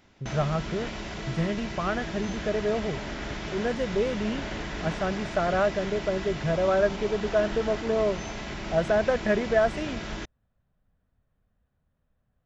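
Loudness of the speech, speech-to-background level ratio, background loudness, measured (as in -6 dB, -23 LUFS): -28.0 LUFS, 7.5 dB, -35.5 LUFS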